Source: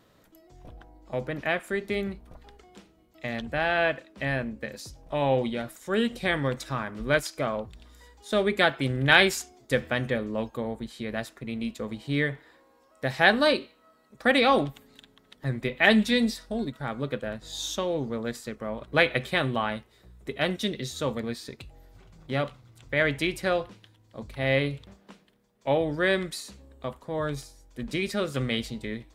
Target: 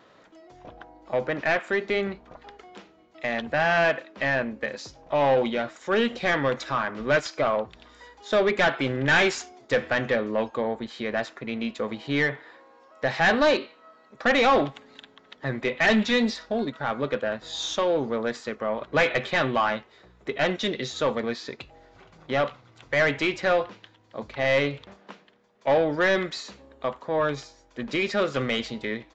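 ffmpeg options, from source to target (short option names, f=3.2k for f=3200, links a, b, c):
-filter_complex "[0:a]asplit=2[a][b];[b]highpass=f=720:p=1,volume=24dB,asoftclip=type=tanh:threshold=-3dB[c];[a][c]amix=inputs=2:normalize=0,lowpass=f=1.8k:p=1,volume=-6dB,aresample=16000,aresample=44100,volume=-6.5dB"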